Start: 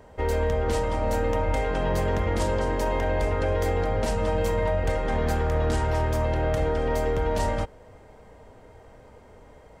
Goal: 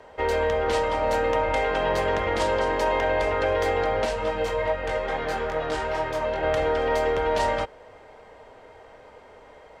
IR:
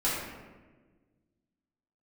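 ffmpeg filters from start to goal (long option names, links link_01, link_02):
-filter_complex "[0:a]equalizer=frequency=9500:width=0.4:gain=10.5,asplit=3[link_01][link_02][link_03];[link_01]afade=type=out:start_time=4.05:duration=0.02[link_04];[link_02]flanger=delay=18.5:depth=2.6:speed=2.3,afade=type=in:start_time=4.05:duration=0.02,afade=type=out:start_time=6.42:duration=0.02[link_05];[link_03]afade=type=in:start_time=6.42:duration=0.02[link_06];[link_04][link_05][link_06]amix=inputs=3:normalize=0,acrossover=split=360 4100:gain=0.224 1 0.1[link_07][link_08][link_09];[link_07][link_08][link_09]amix=inputs=3:normalize=0,volume=4.5dB"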